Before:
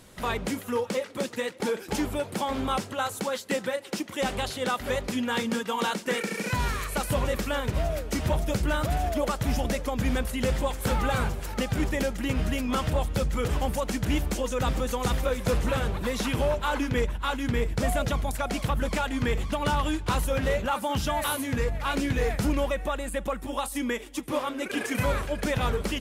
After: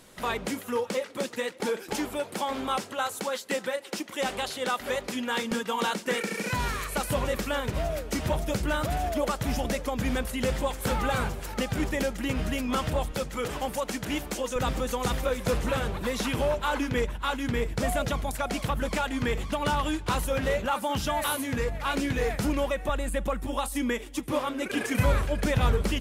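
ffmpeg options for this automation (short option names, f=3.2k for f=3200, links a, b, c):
-af "asetnsamples=n=441:p=0,asendcmd='1.93 equalizer g -15;5.51 equalizer g -4;13.11 equalizer g -14.5;14.56 equalizer g -4;22.89 equalizer g 6',equalizer=f=67:t=o:w=2.4:g=-8.5"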